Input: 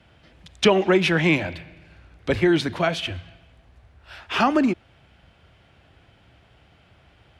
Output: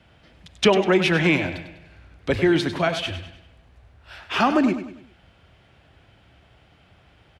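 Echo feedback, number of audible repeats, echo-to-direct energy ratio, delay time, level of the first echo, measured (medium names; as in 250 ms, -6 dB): 42%, 4, -10.0 dB, 99 ms, -11.0 dB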